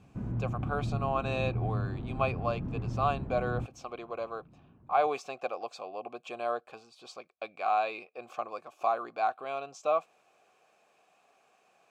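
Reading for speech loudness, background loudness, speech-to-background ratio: -34.0 LUFS, -36.0 LUFS, 2.0 dB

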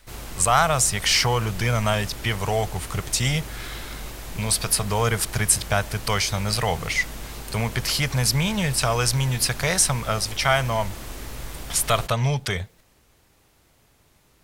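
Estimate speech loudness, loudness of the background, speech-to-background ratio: -22.5 LUFS, -36.5 LUFS, 14.0 dB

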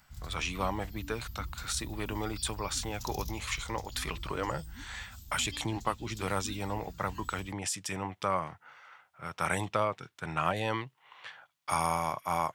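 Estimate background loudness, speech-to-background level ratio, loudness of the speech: -45.5 LUFS, 11.0 dB, -34.5 LUFS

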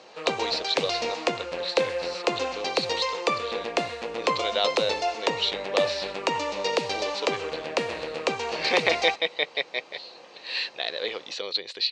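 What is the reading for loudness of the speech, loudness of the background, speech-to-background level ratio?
-29.5 LUFS, -28.5 LUFS, -1.0 dB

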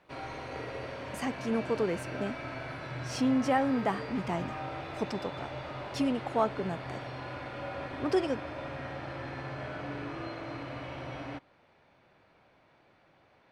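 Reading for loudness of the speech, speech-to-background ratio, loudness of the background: -32.5 LUFS, 7.5 dB, -40.0 LUFS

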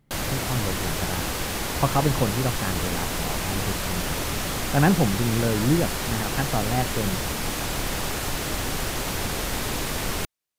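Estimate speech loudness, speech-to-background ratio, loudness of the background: -27.0 LUFS, 0.5 dB, -27.5 LUFS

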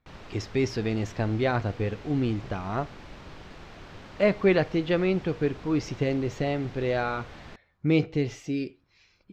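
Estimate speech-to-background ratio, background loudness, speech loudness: 18.5 dB, -46.0 LUFS, -27.5 LUFS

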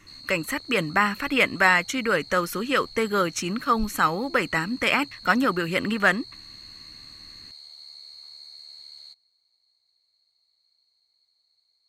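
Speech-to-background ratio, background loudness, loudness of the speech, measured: 18.5 dB, -42.0 LUFS, -23.5 LUFS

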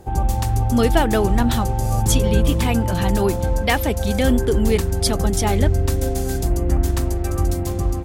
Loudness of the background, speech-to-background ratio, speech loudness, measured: -21.5 LUFS, -1.0 dB, -22.5 LUFS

